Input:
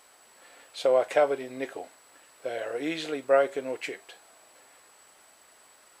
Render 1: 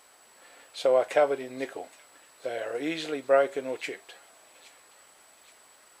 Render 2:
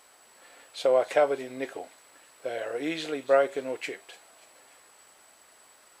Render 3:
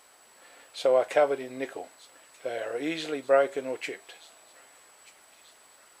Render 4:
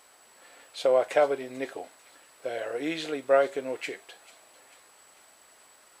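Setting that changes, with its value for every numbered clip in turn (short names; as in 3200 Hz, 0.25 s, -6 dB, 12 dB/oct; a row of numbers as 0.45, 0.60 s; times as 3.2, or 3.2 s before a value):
thin delay, time: 0.821, 0.292, 1.235, 0.443 s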